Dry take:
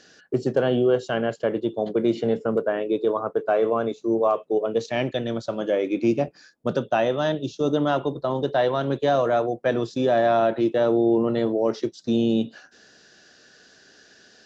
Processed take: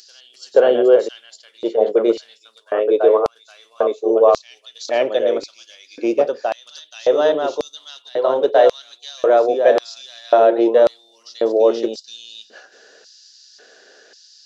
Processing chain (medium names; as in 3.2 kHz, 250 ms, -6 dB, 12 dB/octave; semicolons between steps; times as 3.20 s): reverse echo 478 ms -6.5 dB; LFO high-pass square 0.92 Hz 480–4700 Hz; trim +3 dB